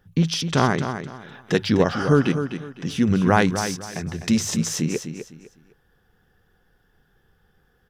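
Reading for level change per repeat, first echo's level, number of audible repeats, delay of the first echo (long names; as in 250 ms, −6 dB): −11.5 dB, −9.0 dB, 3, 253 ms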